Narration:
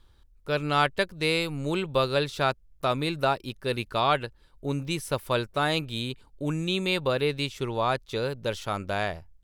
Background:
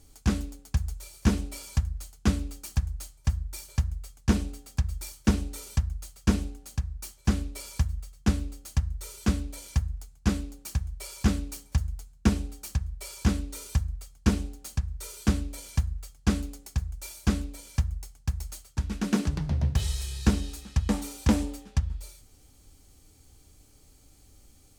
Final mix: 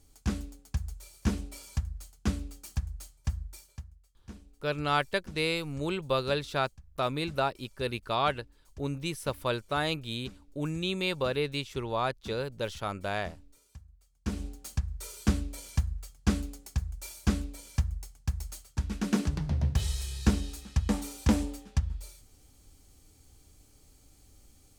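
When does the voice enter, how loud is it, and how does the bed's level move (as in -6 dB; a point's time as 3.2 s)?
4.15 s, -4.0 dB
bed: 3.45 s -5.5 dB
3.99 s -23.5 dB
13.99 s -23.5 dB
14.47 s -2 dB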